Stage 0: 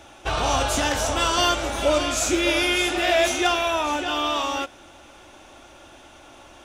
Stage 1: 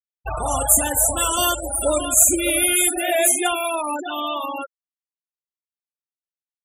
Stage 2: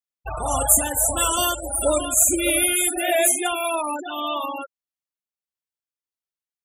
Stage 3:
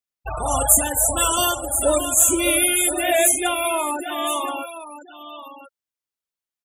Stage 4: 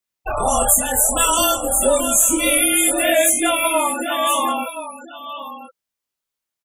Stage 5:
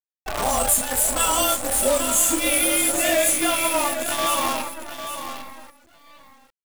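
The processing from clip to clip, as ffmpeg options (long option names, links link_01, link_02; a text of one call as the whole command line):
ffmpeg -i in.wav -af "aexciter=amount=13.4:drive=7.6:freq=8000,afftfilt=real='re*gte(hypot(re,im),0.141)':imag='im*gte(hypot(re,im),0.141)':win_size=1024:overlap=0.75,highshelf=frequency=9800:gain=-5.5" out.wav
ffmpeg -i in.wav -af "tremolo=f=1.6:d=0.31" out.wav
ffmpeg -i in.wav -af "aecho=1:1:1025:0.224,volume=1.5dB" out.wav
ffmpeg -i in.wav -filter_complex "[0:a]acompressor=threshold=-20dB:ratio=3,afreqshift=-28,asplit=2[link_01][link_02];[link_02]adelay=24,volume=-2.5dB[link_03];[link_01][link_03]amix=inputs=2:normalize=0,volume=4.5dB" out.wav
ffmpeg -i in.wav -af "acrusher=bits=4:dc=4:mix=0:aa=0.000001,aecho=1:1:802:0.335,volume=-4.5dB" out.wav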